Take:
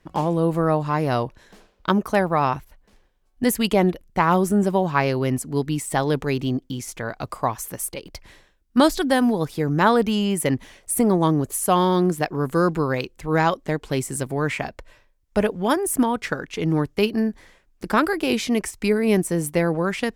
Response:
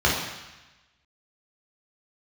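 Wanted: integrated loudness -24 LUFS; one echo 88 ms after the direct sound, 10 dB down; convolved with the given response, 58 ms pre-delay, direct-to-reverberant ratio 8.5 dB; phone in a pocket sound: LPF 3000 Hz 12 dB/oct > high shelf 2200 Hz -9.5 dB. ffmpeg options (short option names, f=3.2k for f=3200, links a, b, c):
-filter_complex "[0:a]aecho=1:1:88:0.316,asplit=2[a][b];[1:a]atrim=start_sample=2205,adelay=58[c];[b][c]afir=irnorm=-1:irlink=0,volume=-26.5dB[d];[a][d]amix=inputs=2:normalize=0,lowpass=3k,highshelf=f=2.2k:g=-9.5,volume=-2.5dB"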